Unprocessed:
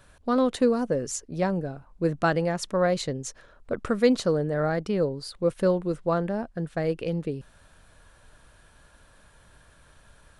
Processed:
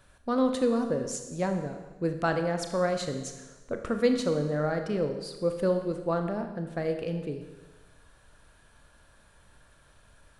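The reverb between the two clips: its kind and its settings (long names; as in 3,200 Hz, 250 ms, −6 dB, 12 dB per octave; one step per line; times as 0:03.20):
four-comb reverb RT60 1.2 s, combs from 27 ms, DRR 6 dB
level −4 dB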